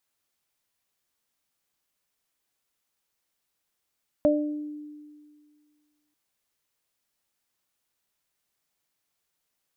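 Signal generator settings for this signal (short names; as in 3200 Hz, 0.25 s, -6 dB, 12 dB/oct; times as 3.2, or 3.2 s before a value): additive tone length 1.89 s, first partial 298 Hz, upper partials 5 dB, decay 1.98 s, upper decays 0.51 s, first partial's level -20.5 dB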